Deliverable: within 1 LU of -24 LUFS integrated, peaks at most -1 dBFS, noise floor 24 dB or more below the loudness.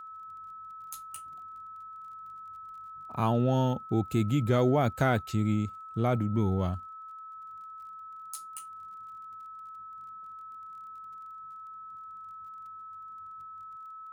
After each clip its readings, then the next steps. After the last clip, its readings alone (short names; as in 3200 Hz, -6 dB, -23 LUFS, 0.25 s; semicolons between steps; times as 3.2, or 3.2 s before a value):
ticks 29/s; steady tone 1300 Hz; tone level -42 dBFS; loudness -29.5 LUFS; peak -12.0 dBFS; loudness target -24.0 LUFS
-> de-click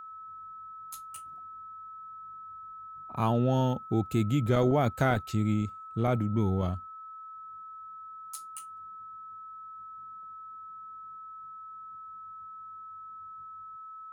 ticks 0.42/s; steady tone 1300 Hz; tone level -42 dBFS
-> notch 1300 Hz, Q 30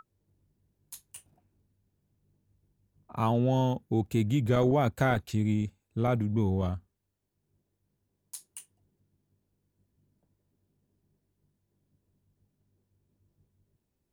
steady tone none; loudness -28.5 LUFS; peak -12.0 dBFS; loudness target -24.0 LUFS
-> gain +4.5 dB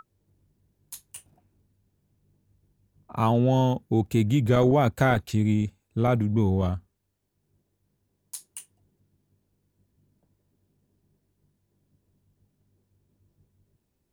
loudness -24.0 LUFS; peak -7.5 dBFS; noise floor -76 dBFS